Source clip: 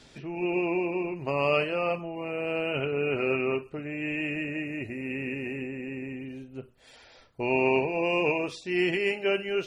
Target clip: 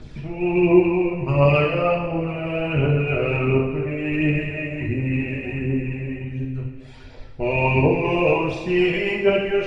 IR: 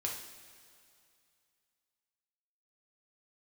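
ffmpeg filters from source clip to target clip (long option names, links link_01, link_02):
-filter_complex "[0:a]aphaser=in_gain=1:out_gain=1:delay=1.9:decay=0.6:speed=1.4:type=triangular,aemphasis=mode=reproduction:type=bsi[link_01];[1:a]atrim=start_sample=2205[link_02];[link_01][link_02]afir=irnorm=-1:irlink=0,volume=3dB"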